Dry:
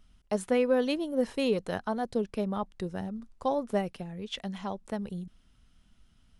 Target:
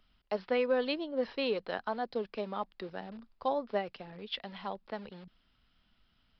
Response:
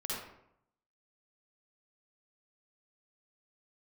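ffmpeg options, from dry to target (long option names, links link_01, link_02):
-filter_complex "[0:a]lowshelf=frequency=330:gain=-11,acrossover=split=160[link_01][link_02];[link_01]aeval=exprs='(mod(447*val(0)+1,2)-1)/447':channel_layout=same[link_03];[link_03][link_02]amix=inputs=2:normalize=0,aresample=11025,aresample=44100"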